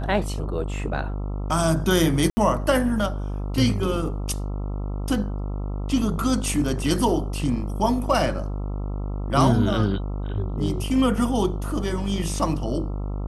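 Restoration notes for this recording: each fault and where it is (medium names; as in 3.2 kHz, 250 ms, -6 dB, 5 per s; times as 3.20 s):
buzz 50 Hz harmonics 27 -28 dBFS
2.30–2.37 s: dropout 70 ms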